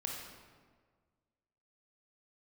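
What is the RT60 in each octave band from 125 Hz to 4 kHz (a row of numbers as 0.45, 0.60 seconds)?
1.9, 1.8, 1.7, 1.5, 1.3, 1.0 seconds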